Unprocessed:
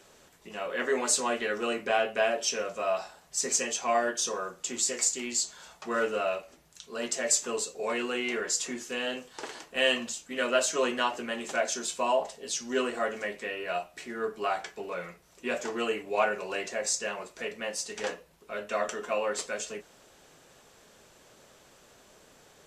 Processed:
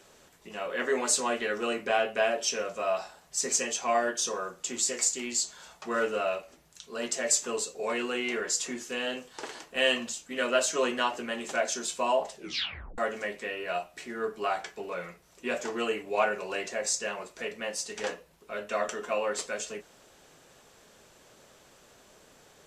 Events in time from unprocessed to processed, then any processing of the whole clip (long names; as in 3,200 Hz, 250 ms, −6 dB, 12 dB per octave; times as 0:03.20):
0:12.33: tape stop 0.65 s